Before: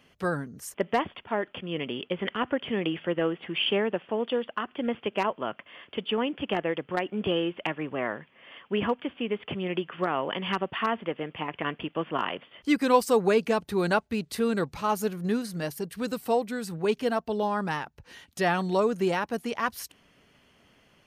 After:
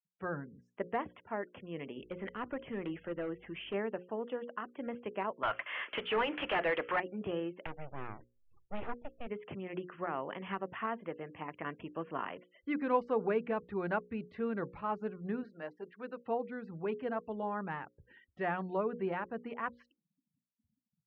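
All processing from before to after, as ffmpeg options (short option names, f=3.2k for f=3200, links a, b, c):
-filter_complex "[0:a]asettb=1/sr,asplit=3[a][b][c];[a]atrim=end=1.984[d];[b]atrim=start=1.98:end=3.74,asetpts=PTS-STARTPTS,afade=t=in:d=0.004:c=qsin,afade=t=out:st=1.756:d=0.004:c=qsin,aeval=exprs='val(0)+0.00141*(sin(2*PI*50*n/s)+sin(2*PI*2*50*n/s)/2+sin(2*PI*3*50*n/s)/3+sin(2*PI*4*50*n/s)/4+sin(2*PI*5*50*n/s)/5)':c=same,asoftclip=type=hard:threshold=-22.5dB[e];[c]atrim=start=3.736[f];[d][e]acrossfade=d=0.004:c1=hsin:c2=qsin[g];[g][f]acrossfade=d=0.004:c1=qsin:c2=hsin,asettb=1/sr,asplit=3[h][i][j];[h]atrim=end=5.434[k];[i]atrim=start=5.43:end=7,asetpts=PTS-STARTPTS,afade=t=in:d=0.004:c=qsin,afade=t=out:st=1.566:d=0.004:c=qsin,aemphasis=mode=production:type=riaa,bandreject=f=700:w=18,asplit=2[l][m];[m]highpass=f=720:p=1,volume=26dB,asoftclip=type=tanh:threshold=-12.5dB[n];[l][n]amix=inputs=2:normalize=0,lowpass=f=6.3k:p=1,volume=-6dB[o];[j]atrim=start=6.996[p];[k][o]acrossfade=d=0.004:c1=hsin:c2=qsin[q];[q][p]acrossfade=d=0.004:c1=qsin:c2=hsin,asettb=1/sr,asplit=3[r][s][t];[r]atrim=end=7.664[u];[s]atrim=start=7.66:end=9.27,asetpts=PTS-STARTPTS,afade=t=in:d=0.004:c=qsin,afade=t=out:st=1.606:d=0.004:c=qsin,equalizer=f=1.6k:w=2.2:g=-9.5,aeval=exprs='abs(val(0))':c=same[v];[t]atrim=start=9.266[w];[u][v]acrossfade=d=0.004:c1=hsin:c2=qsin[x];[x][w]acrossfade=d=0.004:c1=qsin:c2=hsin,asettb=1/sr,asplit=3[y][z][aa];[y]atrim=end=15.434[ab];[z]atrim=start=15.43:end=16.26,asetpts=PTS-STARTPTS,afade=t=in:d=0.004:c=qsin,afade=t=out:st=0.826:d=0.004:c=qsin,highpass=330,bandreject=f=60:t=h:w=6,bandreject=f=120:t=h:w=6,bandreject=f=180:t=h:w=6,bandreject=f=240:t=h:w=6,bandreject=f=300:t=h:w=6,bandreject=f=360:t=h:w=6,bandreject=f=420:t=h:w=6,bandreject=f=480:t=h:w=6[ac];[aa]atrim=start=16.256[ad];[ab][ac]acrossfade=d=0.004:c1=hsin:c2=qsin[ae];[ae][ad]acrossfade=d=0.004:c1=qsin:c2=hsin,afftfilt=real='re*gte(hypot(re,im),0.00562)':imag='im*gte(hypot(re,im),0.00562)':win_size=1024:overlap=0.75,lowpass=f=2.3k:w=0.5412,lowpass=f=2.3k:w=1.3066,bandreject=f=60:t=h:w=6,bandreject=f=120:t=h:w=6,bandreject=f=180:t=h:w=6,bandreject=f=240:t=h:w=6,bandreject=f=300:t=h:w=6,bandreject=f=360:t=h:w=6,bandreject=f=420:t=h:w=6,bandreject=f=480:t=h:w=6,bandreject=f=540:t=h:w=6,volume=-9dB"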